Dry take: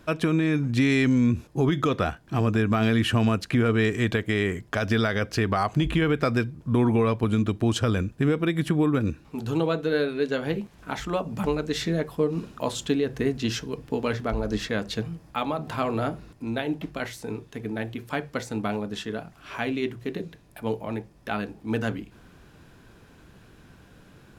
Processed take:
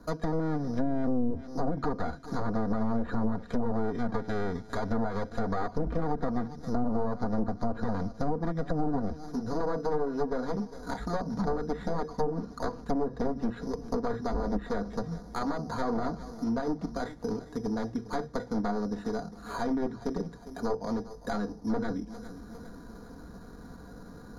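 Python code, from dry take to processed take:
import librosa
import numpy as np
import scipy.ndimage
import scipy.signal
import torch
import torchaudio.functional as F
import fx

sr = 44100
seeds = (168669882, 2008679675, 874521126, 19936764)

p1 = np.minimum(x, 2.0 * 10.0 ** (-25.0 / 20.0) - x)
p2 = scipy.signal.sosfilt(scipy.signal.butter(4, 1500.0, 'lowpass', fs=sr, output='sos'), p1)
p3 = p2 + 0.59 * np.pad(p2, (int(4.2 * sr / 1000.0), 0))[:len(p2)]
p4 = fx.rider(p3, sr, range_db=10, speed_s=2.0)
p5 = p3 + F.gain(torch.from_numpy(p4), -2.5).numpy()
p6 = np.repeat(scipy.signal.resample_poly(p5, 1, 8), 8)[:len(p5)]
p7 = p6 + fx.echo_feedback(p6, sr, ms=404, feedback_pct=44, wet_db=-18, dry=0)
p8 = fx.env_lowpass_down(p7, sr, base_hz=310.0, full_db=-10.5)
p9 = fx.band_squash(p8, sr, depth_pct=40)
y = F.gain(torch.from_numpy(p9), -8.5).numpy()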